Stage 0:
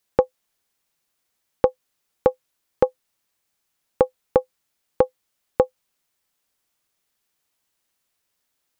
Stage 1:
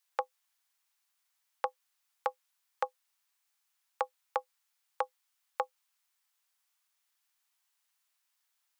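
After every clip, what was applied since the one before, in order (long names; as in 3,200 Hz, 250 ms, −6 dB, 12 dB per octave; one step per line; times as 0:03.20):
inverse Chebyshev high-pass filter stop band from 180 Hz, stop band 70 dB
level −3.5 dB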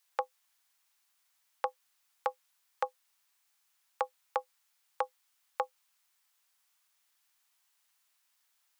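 brickwall limiter −21 dBFS, peak gain reduction 5 dB
level +4.5 dB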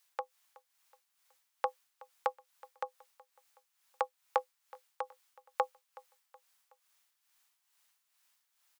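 amplitude tremolo 2.3 Hz, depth 62%
repeating echo 372 ms, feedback 45%, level −22 dB
level +2.5 dB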